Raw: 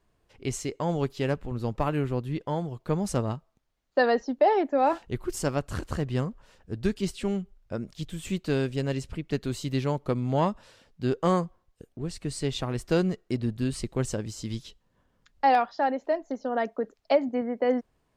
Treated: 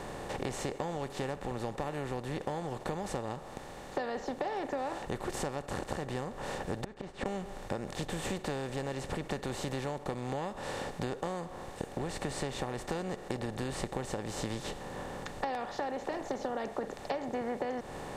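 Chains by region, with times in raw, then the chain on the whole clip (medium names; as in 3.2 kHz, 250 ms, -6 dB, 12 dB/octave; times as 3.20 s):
6.84–7.26 s: low-pass 1.7 kHz + inverted gate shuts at -27 dBFS, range -39 dB
whole clip: spectral levelling over time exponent 0.4; band-stop 640 Hz, Q 12; compression 10:1, threshold -26 dBFS; trim -5.5 dB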